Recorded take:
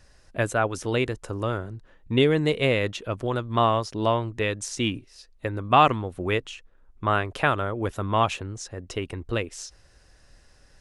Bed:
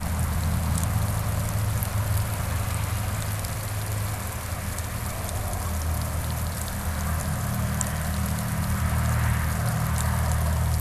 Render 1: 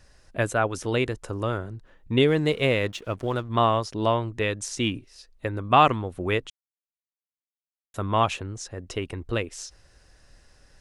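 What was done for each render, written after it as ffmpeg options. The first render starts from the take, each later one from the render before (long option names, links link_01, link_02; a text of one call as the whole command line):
ffmpeg -i in.wav -filter_complex "[0:a]asettb=1/sr,asplit=3[link_01][link_02][link_03];[link_01]atrim=end=2.284[link_04];[link_02]atrim=start=2.28:end=3.49,asetpts=PTS-STARTPTS,afade=type=in:duration=0.004:curve=qsin,afade=type=out:start_time=1.206:duration=0.004:curve=qsin,aeval=exprs='sgn(val(0))*max(abs(val(0))-0.00299,0)':channel_layout=same[link_05];[link_03]atrim=start=3.486[link_06];[link_04][link_05]acrossfade=duration=0.004:curve1=hsin:curve2=qsin[link_07];[link_07][link_06]acrossfade=duration=0.004:curve1=qsin:curve2=hsin,asplit=3[link_08][link_09][link_10];[link_08]atrim=end=6.5,asetpts=PTS-STARTPTS,afade=type=out:start_time=6.496:duration=0.004:curve=hsin[link_11];[link_09]atrim=start=6.5:end=7.94,asetpts=PTS-STARTPTS,volume=0[link_12];[link_10]atrim=start=7.94,asetpts=PTS-STARTPTS,afade=type=in:duration=0.004:curve=hsin[link_13];[link_11][link_12][link_13]concat=n=3:v=0:a=1" out.wav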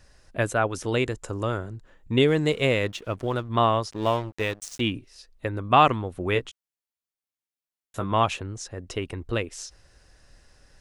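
ffmpeg -i in.wav -filter_complex "[0:a]asettb=1/sr,asplit=3[link_01][link_02][link_03];[link_01]atrim=end=0.844[link_04];[link_02]atrim=start=0.84:end=2.84,asetpts=PTS-STARTPTS,afade=type=in:duration=0.004:curve=qsin,afade=type=out:start_time=1.996:duration=0.004:curve=qsin,equalizer=frequency=7300:width=4.6:gain=8.5[link_05];[link_03]atrim=start=2.836[link_06];[link_04][link_05]acrossfade=duration=0.004:curve1=hsin:curve2=qsin[link_07];[link_07][link_06]acrossfade=duration=0.004:curve1=qsin:curve2=hsin,asettb=1/sr,asplit=3[link_08][link_09][link_10];[link_08]atrim=end=3.914[link_11];[link_09]atrim=start=3.91:end=4.81,asetpts=PTS-STARTPTS,afade=type=in:duration=0.004:curve=qsin,afade=type=out:start_time=0.896:duration=0.004:curve=qsin,aeval=exprs='sgn(val(0))*max(abs(val(0))-0.0141,0)':channel_layout=same[link_12];[link_10]atrim=start=4.806[link_13];[link_11][link_12]acrossfade=duration=0.004:curve1=hsin:curve2=qsin[link_14];[link_14][link_13]acrossfade=duration=0.004:curve1=qsin:curve2=hsin,asettb=1/sr,asplit=3[link_15][link_16][link_17];[link_15]atrim=end=6.344[link_18];[link_16]atrim=start=6.34:end=8.12,asetpts=PTS-STARTPTS,afade=type=in:duration=0.004:curve=qsin,afade=type=out:start_time=1.776:duration=0.004:curve=qsin,asplit=2[link_19][link_20];[link_20]adelay=16,volume=-6.5dB[link_21];[link_19][link_21]amix=inputs=2:normalize=0,atrim=end_sample=78498[link_22];[link_17]atrim=start=8.116[link_23];[link_18][link_22]acrossfade=duration=0.004:curve1=hsin:curve2=qsin[link_24];[link_24][link_23]acrossfade=duration=0.004:curve1=qsin:curve2=hsin" out.wav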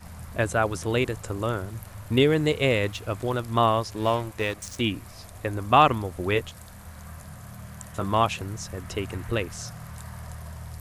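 ffmpeg -i in.wav -i bed.wav -filter_complex "[1:a]volume=-15dB[link_01];[0:a][link_01]amix=inputs=2:normalize=0" out.wav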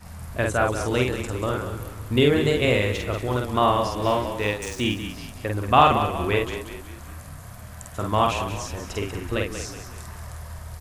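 ffmpeg -i in.wav -filter_complex "[0:a]asplit=2[link_01][link_02];[link_02]adelay=48,volume=-3dB[link_03];[link_01][link_03]amix=inputs=2:normalize=0,asplit=2[link_04][link_05];[link_05]asplit=5[link_06][link_07][link_08][link_09][link_10];[link_06]adelay=186,afreqshift=-33,volume=-9.5dB[link_11];[link_07]adelay=372,afreqshift=-66,volume=-16.2dB[link_12];[link_08]adelay=558,afreqshift=-99,volume=-23dB[link_13];[link_09]adelay=744,afreqshift=-132,volume=-29.7dB[link_14];[link_10]adelay=930,afreqshift=-165,volume=-36.5dB[link_15];[link_11][link_12][link_13][link_14][link_15]amix=inputs=5:normalize=0[link_16];[link_04][link_16]amix=inputs=2:normalize=0" out.wav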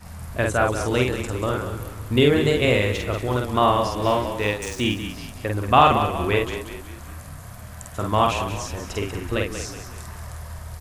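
ffmpeg -i in.wav -af "volume=1.5dB,alimiter=limit=-1dB:level=0:latency=1" out.wav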